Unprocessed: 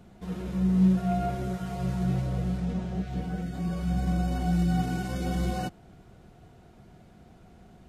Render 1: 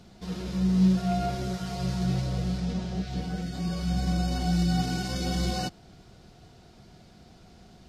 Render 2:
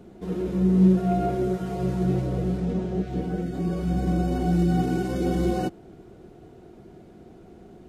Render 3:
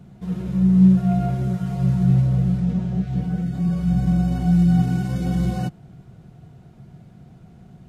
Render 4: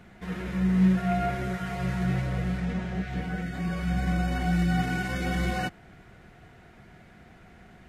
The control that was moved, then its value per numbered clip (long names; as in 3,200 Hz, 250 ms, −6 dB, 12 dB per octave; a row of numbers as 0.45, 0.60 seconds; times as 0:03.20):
parametric band, centre frequency: 4,800, 360, 140, 1,900 Hertz